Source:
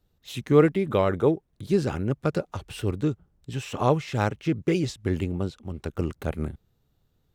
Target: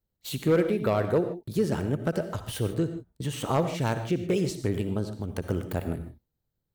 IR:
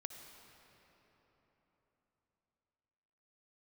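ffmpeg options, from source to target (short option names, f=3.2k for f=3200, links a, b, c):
-filter_complex "[0:a]aemphasis=mode=production:type=75fm,agate=range=-16dB:threshold=-46dB:ratio=16:detection=peak,highshelf=f=2.3k:g=-10.5,asplit=2[a][b];[b]acompressor=threshold=-32dB:ratio=6,volume=2.5dB[c];[a][c]amix=inputs=2:normalize=0,volume=12dB,asoftclip=hard,volume=-12dB[d];[1:a]atrim=start_sample=2205,afade=t=out:st=0.21:d=0.01,atrim=end_sample=9702,asetrate=40572,aresample=44100[e];[d][e]afir=irnorm=-1:irlink=0,asetrate=48000,aresample=44100"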